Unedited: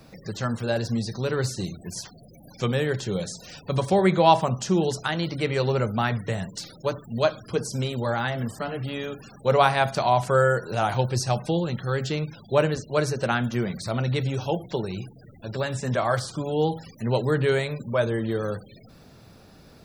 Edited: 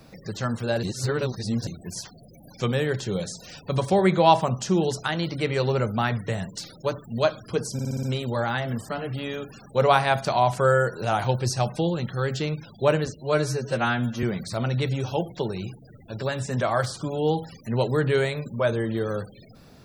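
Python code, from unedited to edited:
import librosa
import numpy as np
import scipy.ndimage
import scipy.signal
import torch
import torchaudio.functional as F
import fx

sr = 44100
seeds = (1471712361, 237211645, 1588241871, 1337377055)

y = fx.edit(x, sr, fx.reverse_span(start_s=0.83, length_s=0.84),
    fx.stutter(start_s=7.73, slice_s=0.06, count=6),
    fx.stretch_span(start_s=12.85, length_s=0.72, factor=1.5), tone=tone)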